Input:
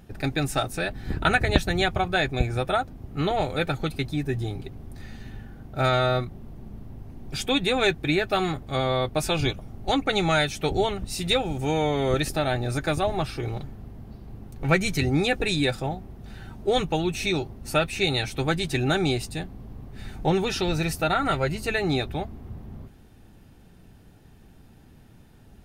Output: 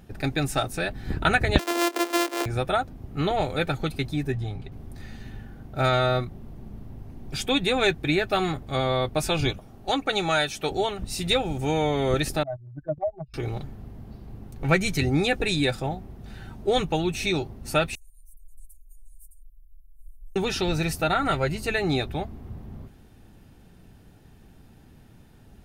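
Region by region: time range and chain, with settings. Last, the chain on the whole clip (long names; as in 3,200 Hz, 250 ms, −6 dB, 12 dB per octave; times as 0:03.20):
0:01.59–0:02.46: samples sorted by size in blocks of 128 samples + Butterworth high-pass 270 Hz 96 dB per octave + one half of a high-frequency compander encoder only
0:04.32–0:04.72: low-pass filter 3,000 Hz 6 dB per octave + parametric band 340 Hz −8.5 dB 0.73 octaves
0:09.58–0:10.99: low-shelf EQ 200 Hz −10.5 dB + notch filter 2,100 Hz, Q 13
0:12.43–0:13.34: expanding power law on the bin magnitudes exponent 3.8 + noise gate −25 dBFS, range −22 dB + upward compression, threshold −35 dBFS
0:17.95–0:20.36: inverse Chebyshev band-stop filter 110–3,900 Hz, stop band 60 dB + flanger whose copies keep moving one way falling 1.9 Hz
whole clip: no processing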